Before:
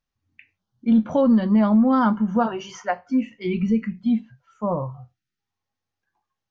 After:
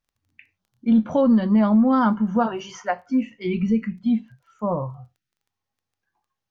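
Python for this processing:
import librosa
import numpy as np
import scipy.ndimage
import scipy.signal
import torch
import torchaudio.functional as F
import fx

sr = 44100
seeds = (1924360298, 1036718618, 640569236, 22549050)

y = fx.dmg_crackle(x, sr, seeds[0], per_s=13.0, level_db=-50.0)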